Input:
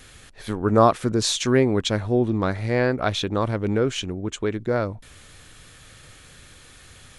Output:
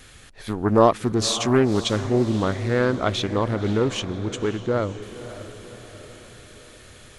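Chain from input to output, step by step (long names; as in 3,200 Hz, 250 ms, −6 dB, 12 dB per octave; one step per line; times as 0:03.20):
feedback delay with all-pass diffusion 558 ms, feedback 54%, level −13.5 dB
highs frequency-modulated by the lows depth 0.34 ms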